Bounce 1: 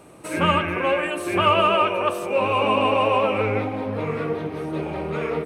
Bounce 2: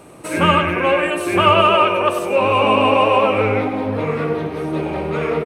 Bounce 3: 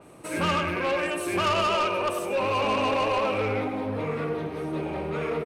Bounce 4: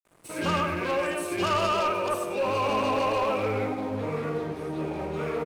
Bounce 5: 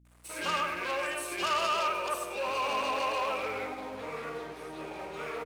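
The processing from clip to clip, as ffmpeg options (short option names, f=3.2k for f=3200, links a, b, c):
-af "aecho=1:1:99:0.299,volume=5dB"
-af "asoftclip=type=tanh:threshold=-12dB,adynamicequalizer=threshold=0.0224:dfrequency=4400:dqfactor=0.7:tfrequency=4400:tqfactor=0.7:attack=5:release=100:ratio=0.375:range=2:mode=boostabove:tftype=highshelf,volume=-7.5dB"
-filter_complex "[0:a]acrossover=split=2600[a][b];[a]adelay=50[c];[c][b]amix=inputs=2:normalize=0,aeval=exprs='sgn(val(0))*max(abs(val(0))-0.00398,0)':c=same"
-af "highpass=f=1.2k:p=1,aeval=exprs='val(0)+0.001*(sin(2*PI*60*n/s)+sin(2*PI*2*60*n/s)/2+sin(2*PI*3*60*n/s)/3+sin(2*PI*4*60*n/s)/4+sin(2*PI*5*60*n/s)/5)':c=same"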